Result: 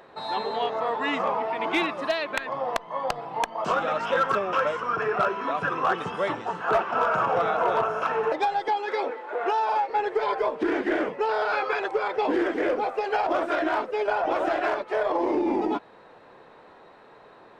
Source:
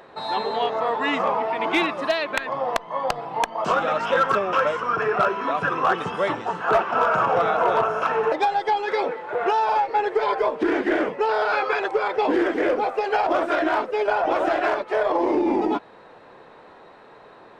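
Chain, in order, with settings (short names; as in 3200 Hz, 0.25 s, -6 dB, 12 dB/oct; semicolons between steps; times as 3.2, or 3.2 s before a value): 8.68–9.9 Chebyshev high-pass 210 Hz, order 6; gain -3.5 dB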